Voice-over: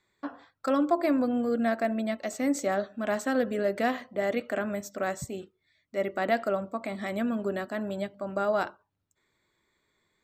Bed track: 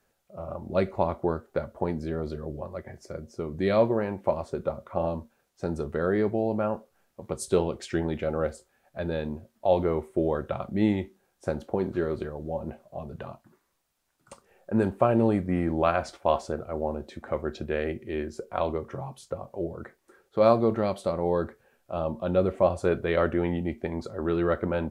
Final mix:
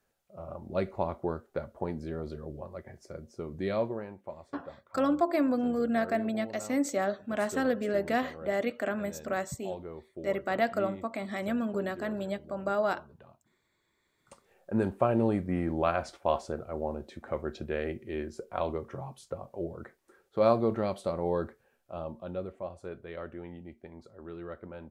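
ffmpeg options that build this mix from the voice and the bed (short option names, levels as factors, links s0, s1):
-filter_complex "[0:a]adelay=4300,volume=0.841[s0];[1:a]volume=2.24,afade=t=out:st=3.53:d=0.72:silence=0.281838,afade=t=in:st=13.92:d=0.63:silence=0.237137,afade=t=out:st=21.36:d=1.23:silence=0.237137[s1];[s0][s1]amix=inputs=2:normalize=0"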